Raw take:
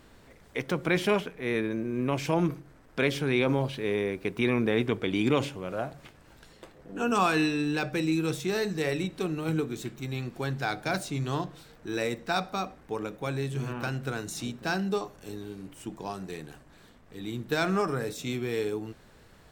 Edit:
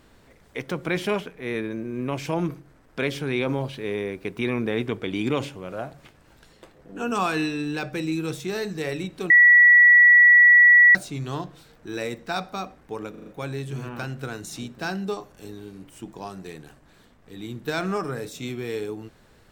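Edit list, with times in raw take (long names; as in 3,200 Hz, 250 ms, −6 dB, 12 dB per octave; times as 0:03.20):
0:09.30–0:10.95: beep over 1,940 Hz −9.5 dBFS
0:13.10: stutter 0.04 s, 5 plays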